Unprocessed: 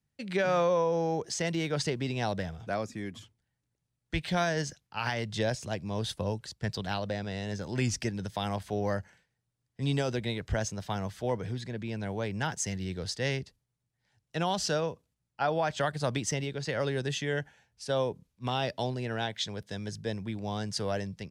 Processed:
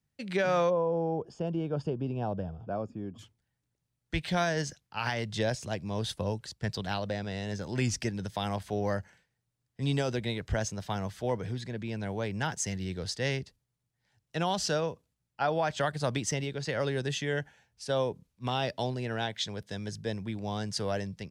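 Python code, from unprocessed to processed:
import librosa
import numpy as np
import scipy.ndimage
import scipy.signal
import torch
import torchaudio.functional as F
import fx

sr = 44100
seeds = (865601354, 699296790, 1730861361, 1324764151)

y = fx.moving_average(x, sr, points=22, at=(0.69, 3.18), fade=0.02)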